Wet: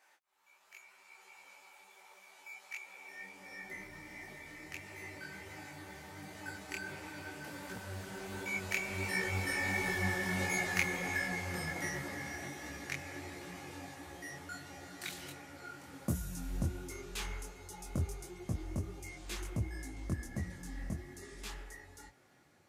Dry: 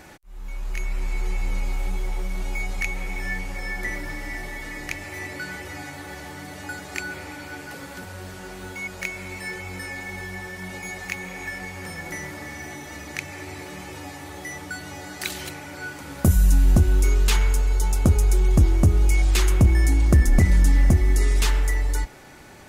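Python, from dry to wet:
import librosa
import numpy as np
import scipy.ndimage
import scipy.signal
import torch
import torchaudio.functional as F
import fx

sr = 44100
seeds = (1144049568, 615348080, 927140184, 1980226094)

y = fx.doppler_pass(x, sr, speed_mps=12, closest_m=12.0, pass_at_s=10.15)
y = fx.filter_sweep_highpass(y, sr, from_hz=840.0, to_hz=93.0, start_s=2.83, end_s=3.91, q=0.89)
y = fx.detune_double(y, sr, cents=49)
y = y * 10.0 ** (4.5 / 20.0)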